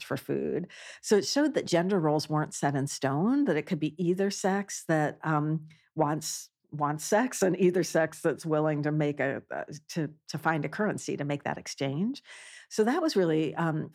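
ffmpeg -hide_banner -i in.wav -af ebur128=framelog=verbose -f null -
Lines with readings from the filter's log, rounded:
Integrated loudness:
  I:         -29.1 LUFS
  Threshold: -39.3 LUFS
Loudness range:
  LRA:         3.9 LU
  Threshold: -49.3 LUFS
  LRA low:   -31.8 LUFS
  LRA high:  -27.9 LUFS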